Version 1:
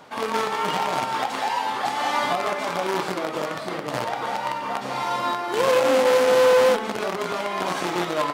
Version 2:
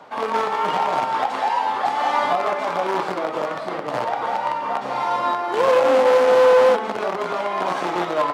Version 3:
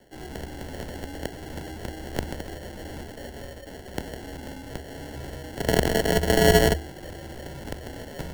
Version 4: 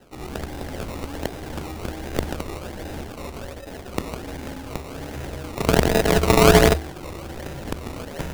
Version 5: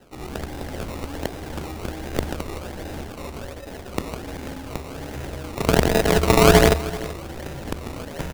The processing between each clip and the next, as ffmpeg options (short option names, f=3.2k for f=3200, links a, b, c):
-filter_complex "[0:a]lowpass=f=3.5k:p=1,lowshelf=f=120:g=-7,acrossover=split=560|1100[a][b][c];[b]acontrast=81[d];[a][d][c]amix=inputs=3:normalize=0"
-af "acrusher=samples=35:mix=1:aa=0.000001,aeval=exprs='0.473*(cos(1*acos(clip(val(0)/0.473,-1,1)))-cos(1*PI/2))+0.188*(cos(3*acos(clip(val(0)/0.473,-1,1)))-cos(3*PI/2))+0.00335*(cos(7*acos(clip(val(0)/0.473,-1,1)))-cos(7*PI/2))+0.0106*(cos(8*acos(clip(val(0)/0.473,-1,1)))-cos(8*PI/2))':c=same,afreqshift=-76"
-af "acrusher=samples=19:mix=1:aa=0.000001:lfo=1:lforange=19:lforate=1.3,volume=4.5dB"
-af "aecho=1:1:384:0.141"